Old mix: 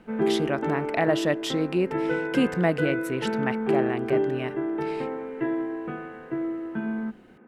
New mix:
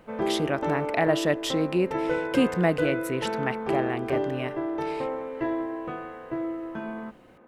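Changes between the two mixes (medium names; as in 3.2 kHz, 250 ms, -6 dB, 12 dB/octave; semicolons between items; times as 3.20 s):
speech: add treble shelf 7.5 kHz +4.5 dB; background: remove cabinet simulation 110–3100 Hz, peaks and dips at 150 Hz +5 dB, 220 Hz +8 dB, 400 Hz +6 dB, 570 Hz -10 dB, 1.1 kHz -7 dB, 1.5 kHz +4 dB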